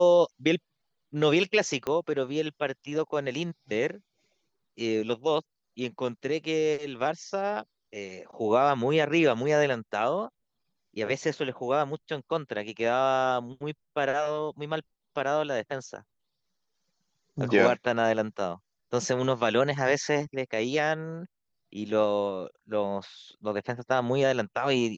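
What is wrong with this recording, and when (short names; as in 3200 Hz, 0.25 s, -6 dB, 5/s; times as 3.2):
1.87 pop -17 dBFS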